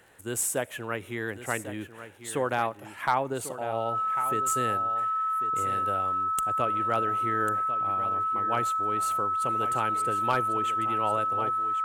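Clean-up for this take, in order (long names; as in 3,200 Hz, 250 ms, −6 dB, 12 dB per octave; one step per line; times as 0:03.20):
clipped peaks rebuilt −14.5 dBFS
click removal
notch filter 1,300 Hz, Q 30
echo removal 1,096 ms −12 dB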